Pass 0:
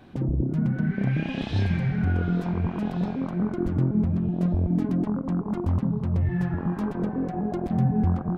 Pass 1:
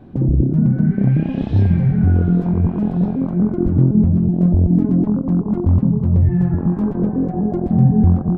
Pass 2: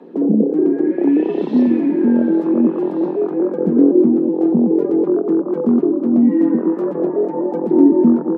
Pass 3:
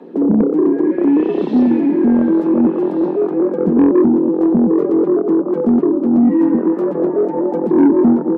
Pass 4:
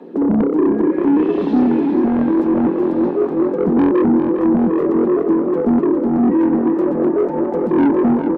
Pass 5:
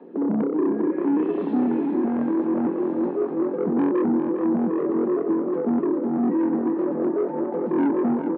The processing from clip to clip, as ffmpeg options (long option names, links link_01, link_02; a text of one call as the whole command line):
ffmpeg -i in.wav -af "tiltshelf=frequency=970:gain=9.5,volume=1dB" out.wav
ffmpeg -i in.wav -af "aphaser=in_gain=1:out_gain=1:delay=4:decay=0.22:speed=0.77:type=triangular,afreqshift=150" out.wav
ffmpeg -i in.wav -af "acontrast=65,volume=-3.5dB" out.wav
ffmpeg -i in.wav -af "asoftclip=type=tanh:threshold=-9.5dB,aecho=1:1:405|810|1215|1620|2025:0.398|0.183|0.0842|0.0388|0.0178" out.wav
ffmpeg -i in.wav -af "highpass=150,lowpass=2500,volume=-7dB" out.wav